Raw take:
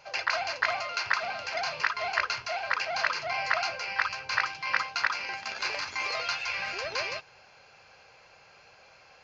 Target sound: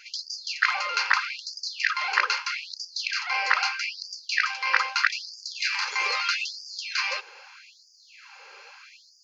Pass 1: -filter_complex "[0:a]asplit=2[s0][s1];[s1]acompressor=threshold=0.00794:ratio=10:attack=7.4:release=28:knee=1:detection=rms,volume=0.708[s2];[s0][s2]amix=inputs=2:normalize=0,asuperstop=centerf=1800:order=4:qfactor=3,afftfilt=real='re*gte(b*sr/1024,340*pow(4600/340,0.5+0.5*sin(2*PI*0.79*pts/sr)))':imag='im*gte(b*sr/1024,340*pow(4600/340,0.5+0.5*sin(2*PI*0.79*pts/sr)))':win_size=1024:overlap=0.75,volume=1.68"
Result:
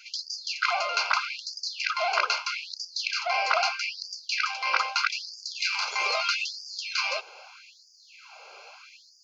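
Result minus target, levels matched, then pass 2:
500 Hz band +10.5 dB
-filter_complex "[0:a]asplit=2[s0][s1];[s1]acompressor=threshold=0.00794:ratio=10:attack=7.4:release=28:knee=1:detection=rms,volume=0.708[s2];[s0][s2]amix=inputs=2:normalize=0,asuperstop=centerf=670:order=4:qfactor=3,afftfilt=real='re*gte(b*sr/1024,340*pow(4600/340,0.5+0.5*sin(2*PI*0.79*pts/sr)))':imag='im*gte(b*sr/1024,340*pow(4600/340,0.5+0.5*sin(2*PI*0.79*pts/sr)))':win_size=1024:overlap=0.75,volume=1.68"

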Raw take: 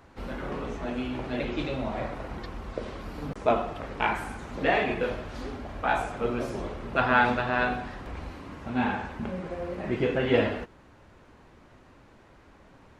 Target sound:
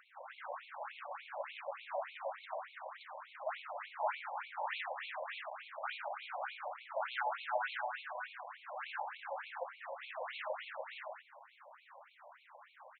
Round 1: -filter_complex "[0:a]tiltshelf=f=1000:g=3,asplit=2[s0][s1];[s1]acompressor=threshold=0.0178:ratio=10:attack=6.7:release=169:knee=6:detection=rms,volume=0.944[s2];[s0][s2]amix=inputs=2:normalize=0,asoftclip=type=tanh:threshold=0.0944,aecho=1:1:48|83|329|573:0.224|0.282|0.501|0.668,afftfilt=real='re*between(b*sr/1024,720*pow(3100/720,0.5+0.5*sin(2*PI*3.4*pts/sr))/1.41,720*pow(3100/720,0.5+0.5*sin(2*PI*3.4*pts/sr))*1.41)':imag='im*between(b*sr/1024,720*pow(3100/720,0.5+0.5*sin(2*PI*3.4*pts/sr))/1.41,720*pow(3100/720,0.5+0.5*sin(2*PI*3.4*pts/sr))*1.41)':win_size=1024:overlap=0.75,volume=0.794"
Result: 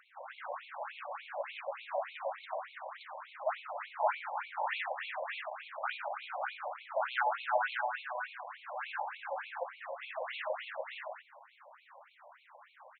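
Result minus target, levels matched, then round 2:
compression: peak gain reduction -10.5 dB; saturation: distortion -5 dB
-filter_complex "[0:a]tiltshelf=f=1000:g=3,asplit=2[s0][s1];[s1]acompressor=threshold=0.00473:ratio=10:attack=6.7:release=169:knee=6:detection=rms,volume=0.944[s2];[s0][s2]amix=inputs=2:normalize=0,asoftclip=type=tanh:threshold=0.0398,aecho=1:1:48|83|329|573:0.224|0.282|0.501|0.668,afftfilt=real='re*between(b*sr/1024,720*pow(3100/720,0.5+0.5*sin(2*PI*3.4*pts/sr))/1.41,720*pow(3100/720,0.5+0.5*sin(2*PI*3.4*pts/sr))*1.41)':imag='im*between(b*sr/1024,720*pow(3100/720,0.5+0.5*sin(2*PI*3.4*pts/sr))/1.41,720*pow(3100/720,0.5+0.5*sin(2*PI*3.4*pts/sr))*1.41)':win_size=1024:overlap=0.75,volume=0.794"

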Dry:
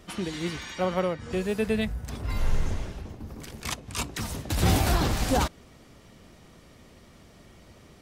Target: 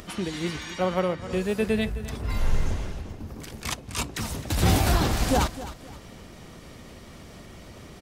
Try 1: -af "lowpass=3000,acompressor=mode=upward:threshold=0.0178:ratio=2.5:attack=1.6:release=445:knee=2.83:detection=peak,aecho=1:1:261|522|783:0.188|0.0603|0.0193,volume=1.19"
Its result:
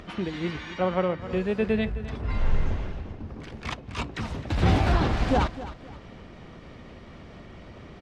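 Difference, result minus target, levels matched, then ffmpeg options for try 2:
4 kHz band -4.5 dB
-af "acompressor=mode=upward:threshold=0.0178:ratio=2.5:attack=1.6:release=445:knee=2.83:detection=peak,aecho=1:1:261|522|783:0.188|0.0603|0.0193,volume=1.19"

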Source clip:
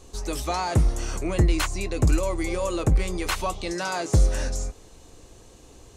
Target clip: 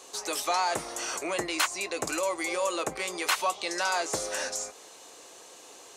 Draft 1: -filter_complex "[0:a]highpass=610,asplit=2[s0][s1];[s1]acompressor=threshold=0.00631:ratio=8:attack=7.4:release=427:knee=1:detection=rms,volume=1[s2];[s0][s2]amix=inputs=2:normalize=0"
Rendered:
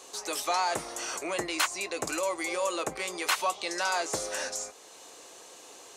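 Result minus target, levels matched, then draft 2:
compression: peak gain reduction +6 dB
-filter_complex "[0:a]highpass=610,asplit=2[s0][s1];[s1]acompressor=threshold=0.0141:ratio=8:attack=7.4:release=427:knee=1:detection=rms,volume=1[s2];[s0][s2]amix=inputs=2:normalize=0"

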